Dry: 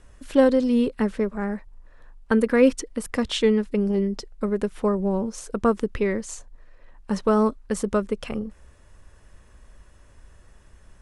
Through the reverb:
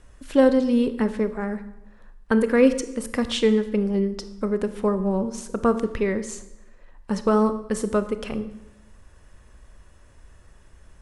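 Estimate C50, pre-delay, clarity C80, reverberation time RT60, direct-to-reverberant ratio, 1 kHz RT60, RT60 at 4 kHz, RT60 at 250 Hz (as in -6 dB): 13.0 dB, 26 ms, 15.0 dB, 0.90 s, 11.0 dB, 0.80 s, 0.75 s, 1.0 s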